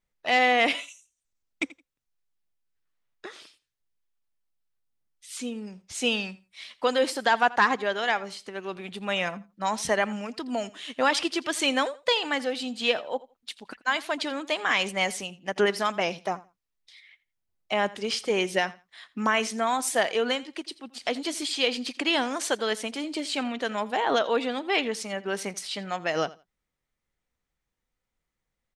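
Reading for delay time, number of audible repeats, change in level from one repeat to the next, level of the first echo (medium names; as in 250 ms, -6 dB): 84 ms, 2, -15.0 dB, -20.0 dB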